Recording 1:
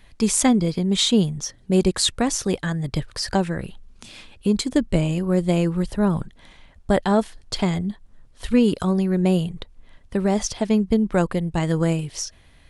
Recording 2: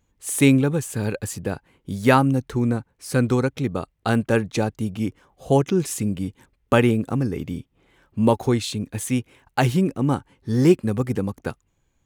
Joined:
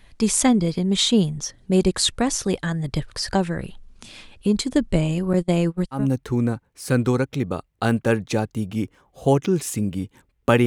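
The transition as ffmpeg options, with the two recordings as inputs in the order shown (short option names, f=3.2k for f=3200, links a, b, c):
-filter_complex "[0:a]asettb=1/sr,asplit=3[a][b][c];[a]atrim=end=5.334[d];[b]atrim=start=5.33:end=6.07,asetpts=PTS-STARTPTS,afade=t=in:d=0.004:c=qsin,afade=t=out:st=0.736:d=0.004:c=qsin,agate=range=-28dB:threshold=-23dB:ratio=16:release=100:detection=peak[e];[c]atrim=start=6.066[f];[d][e]acrossfade=d=0.004:c1=hsin:c2=qsin[g];[g][f]acrossfade=d=0.004:c1=qsin:c2=hsin,apad=whole_dur=10.66,atrim=end=10.66,atrim=end=6.07,asetpts=PTS-STARTPTS[h];[1:a]atrim=start=2.15:end=6.9,asetpts=PTS-STARTPTS[i];[h][i]acrossfade=d=0.16:c1=tri:c2=tri"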